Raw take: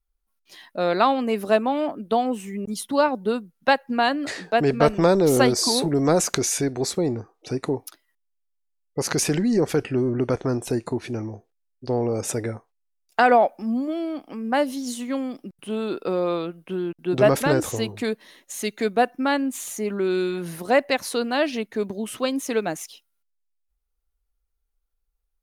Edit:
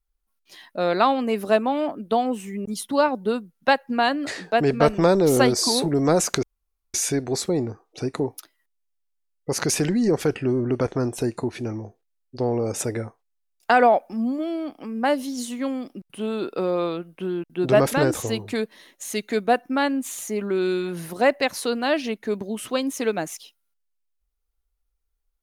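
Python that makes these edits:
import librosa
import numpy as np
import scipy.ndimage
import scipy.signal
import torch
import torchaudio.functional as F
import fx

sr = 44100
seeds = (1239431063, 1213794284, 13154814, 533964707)

y = fx.edit(x, sr, fx.insert_room_tone(at_s=6.43, length_s=0.51), tone=tone)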